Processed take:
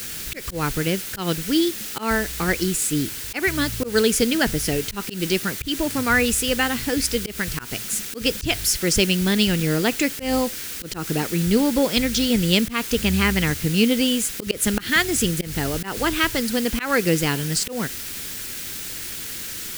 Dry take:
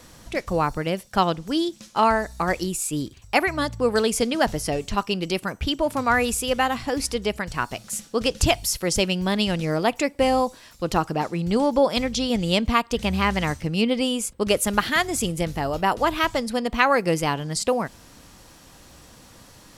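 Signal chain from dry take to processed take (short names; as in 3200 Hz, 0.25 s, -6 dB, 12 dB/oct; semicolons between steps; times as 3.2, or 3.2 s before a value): requantised 6-bit, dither triangular; band shelf 810 Hz -10 dB 1.3 oct; auto swell 0.144 s; gain +4 dB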